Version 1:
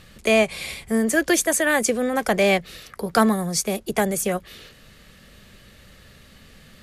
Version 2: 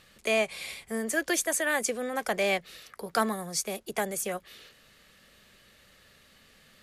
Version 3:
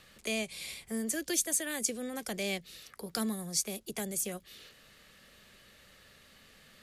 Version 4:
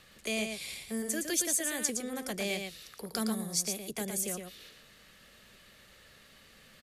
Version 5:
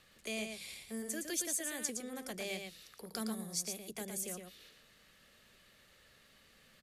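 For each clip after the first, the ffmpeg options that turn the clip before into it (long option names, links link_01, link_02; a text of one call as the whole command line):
ffmpeg -i in.wav -af "lowshelf=frequency=260:gain=-11.5,volume=-6.5dB" out.wav
ffmpeg -i in.wav -filter_complex "[0:a]acrossover=split=350|3000[link_01][link_02][link_03];[link_02]acompressor=threshold=-55dB:ratio=2[link_04];[link_01][link_04][link_03]amix=inputs=3:normalize=0" out.wav
ffmpeg -i in.wav -af "aecho=1:1:114:0.531" out.wav
ffmpeg -i in.wav -af "bandreject=frequency=50:width_type=h:width=6,bandreject=frequency=100:width_type=h:width=6,bandreject=frequency=150:width_type=h:width=6,bandreject=frequency=200:width_type=h:width=6,volume=-6.5dB" out.wav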